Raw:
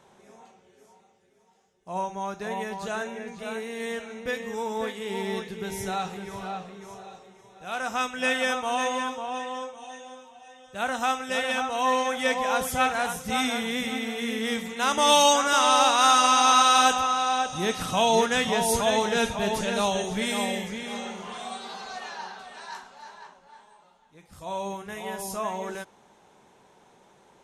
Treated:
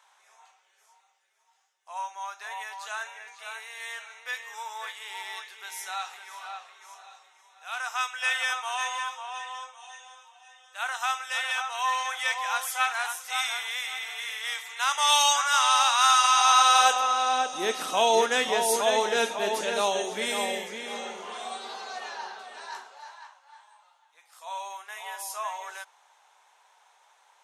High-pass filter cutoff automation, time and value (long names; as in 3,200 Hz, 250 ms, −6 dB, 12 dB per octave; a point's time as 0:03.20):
high-pass filter 24 dB per octave
0:16.29 910 Hz
0:17.36 300 Hz
0:22.77 300 Hz
0:23.21 800 Hz